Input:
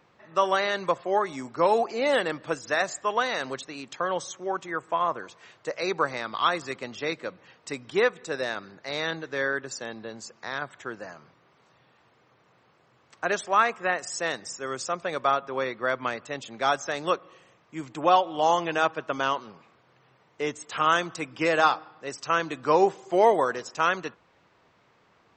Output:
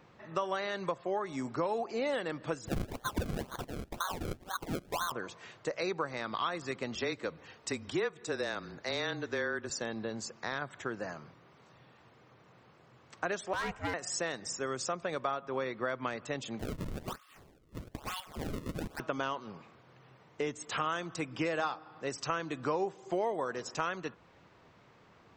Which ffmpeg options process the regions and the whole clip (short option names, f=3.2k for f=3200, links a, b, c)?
-filter_complex "[0:a]asettb=1/sr,asplit=3[a][b][c];[a]atrim=end=2.674[d];[b]atrim=start=2.67:end=5.12,asetpts=PTS-STARTPTS,afade=t=in:d=0.004:c=qsin,afade=t=out:st=2.446:d=0.004:c=qsin,highpass=f=1.1k:w=0.5412,highpass=f=1.1k:w=1.3066,acrusher=samples=33:mix=1:aa=0.000001:lfo=1:lforange=33:lforate=2[e];[c]atrim=start=5.116[f];[d][e]acrossfade=d=0.004:c1=hsin:c2=qsin[g];[g][f]acrossfade=d=0.004:c1=qsin:c2=hsin,asettb=1/sr,asplit=3[h][i][j];[h]atrim=end=6.954[k];[i]atrim=start=6.95:end=9.7,asetpts=PTS-STARTPTS,afade=t=in:d=0.004:c=qsin,afade=t=out:st=2.746:d=0.004:c=qsin,bass=f=250:g=-4,treble=f=4k:g=3,afreqshift=-23[l];[j]atrim=start=9.696[m];[k][l]acrossfade=d=0.004:c1=hsin:c2=qsin[n];[n][m]acrossfade=d=0.004:c1=qsin:c2=hsin,asettb=1/sr,asplit=3[o][p][q];[o]atrim=end=13.534[r];[p]atrim=start=13.53:end=13.94,asetpts=PTS-STARTPTS,afade=t=in:d=0.004:c=qsin,afade=t=out:st=0.406:d=0.004:c=qsin,volume=22dB,asoftclip=hard,volume=-22dB,aeval=exprs='val(0)*sin(2*PI*270*n/s)':c=same[s];[q]atrim=start=13.936[t];[r][s]acrossfade=d=0.004:c1=hsin:c2=qsin[u];[u][t]acrossfade=d=0.004:c1=qsin:c2=hsin,asettb=1/sr,asplit=3[v][w][x];[v]atrim=end=16.594[y];[w]atrim=start=16.59:end=19,asetpts=PTS-STARTPTS,afade=t=in:d=0.004:c=qsin,afade=t=out:st=2.406:d=0.004:c=qsin,highpass=f=1.5k:w=0.5412,highpass=f=1.5k:w=1.3066,acompressor=threshold=-35dB:ratio=6:attack=3.2:release=140:knee=1:detection=peak,acrusher=samples=32:mix=1:aa=0.000001:lfo=1:lforange=51.2:lforate=1.1[z];[x]atrim=start=18.996[aa];[y][z]acrossfade=d=0.004:c1=hsin:c2=qsin[ab];[ab][aa]acrossfade=d=0.004:c1=qsin:c2=hsin,lowshelf=f=320:g=6.5,acompressor=threshold=-32dB:ratio=4"